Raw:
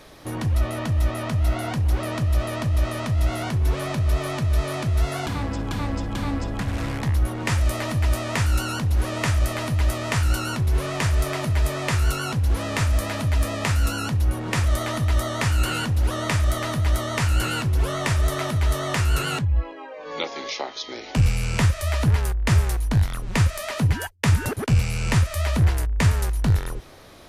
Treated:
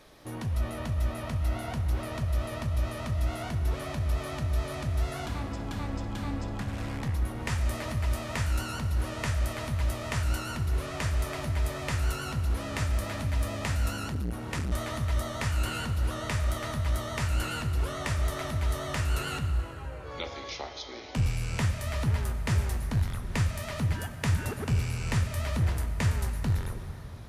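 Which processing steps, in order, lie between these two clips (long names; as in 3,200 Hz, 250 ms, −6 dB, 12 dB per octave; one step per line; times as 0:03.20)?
dense smooth reverb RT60 3.9 s, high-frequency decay 0.6×, DRR 7 dB
0:13.97–0:14.72: saturating transformer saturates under 260 Hz
level −8.5 dB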